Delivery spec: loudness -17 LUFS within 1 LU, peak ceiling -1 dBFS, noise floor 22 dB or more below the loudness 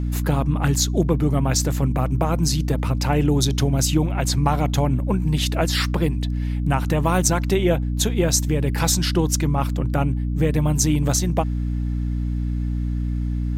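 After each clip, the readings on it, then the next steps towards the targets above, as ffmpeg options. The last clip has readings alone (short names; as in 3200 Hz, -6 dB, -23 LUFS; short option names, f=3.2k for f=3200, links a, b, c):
hum 60 Hz; harmonics up to 300 Hz; hum level -21 dBFS; loudness -21.5 LUFS; peak -4.0 dBFS; loudness target -17.0 LUFS
-> -af "bandreject=f=60:t=h:w=4,bandreject=f=120:t=h:w=4,bandreject=f=180:t=h:w=4,bandreject=f=240:t=h:w=4,bandreject=f=300:t=h:w=4"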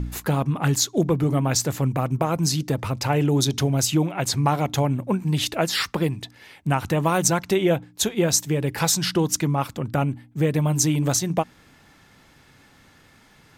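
hum none; loudness -22.5 LUFS; peak -5.0 dBFS; loudness target -17.0 LUFS
-> -af "volume=5.5dB,alimiter=limit=-1dB:level=0:latency=1"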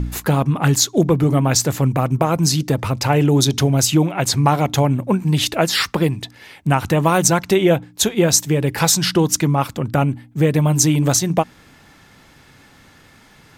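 loudness -17.0 LUFS; peak -1.0 dBFS; noise floor -49 dBFS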